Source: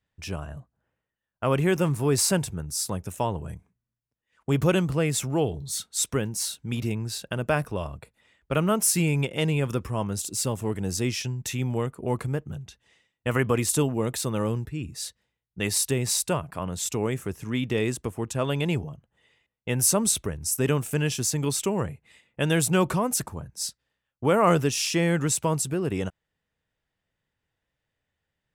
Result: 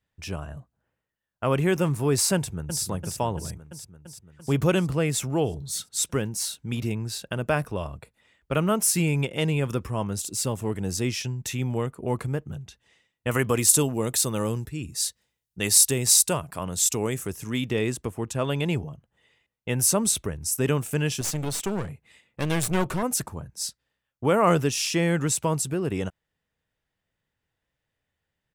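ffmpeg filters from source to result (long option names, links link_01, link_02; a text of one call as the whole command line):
ffmpeg -i in.wav -filter_complex "[0:a]asplit=2[link_01][link_02];[link_02]afade=type=in:start_time=2.35:duration=0.01,afade=type=out:start_time=2.82:duration=0.01,aecho=0:1:340|680|1020|1360|1700|2040|2380|2720|3060|3400|3740:0.421697|0.295188|0.206631|0.144642|0.101249|0.0708745|0.0496122|0.0347285|0.02431|0.017017|0.0119119[link_03];[link_01][link_03]amix=inputs=2:normalize=0,asettb=1/sr,asplit=3[link_04][link_05][link_06];[link_04]atrim=end=13.314[link_07];[link_05]atrim=start=13.31:end=17.7,asetpts=PTS-STARTPTS,afade=type=in:duration=0.004:curve=qsin,afade=type=out:start_time=4.386:duration=0.004:curve=qsin,bass=frequency=250:gain=-1,treble=frequency=4000:gain=9[link_08];[link_06]atrim=start=17.696[link_09];[link_07][link_08]acrossfade=duration=0.004:curve1=hsin:curve2=qsin[link_10];[link_10][link_09]acrossfade=duration=0.004:curve1=qsin:curve2=hsin,asettb=1/sr,asplit=3[link_11][link_12][link_13];[link_11]atrim=end=21.214[link_14];[link_12]atrim=start=21.21:end=23.03,asetpts=PTS-STARTPTS,afade=type=in:duration=0.004:curve=qsin,afade=type=out:start_time=1.816:duration=0.004:curve=qsin,aeval=exprs='clip(val(0),-1,0.0251)':channel_layout=same[link_15];[link_13]atrim=start=23.026[link_16];[link_14][link_15]acrossfade=duration=0.004:curve1=hsin:curve2=qsin[link_17];[link_17][link_16]acrossfade=duration=0.004:curve1=qsin:curve2=hsin" out.wav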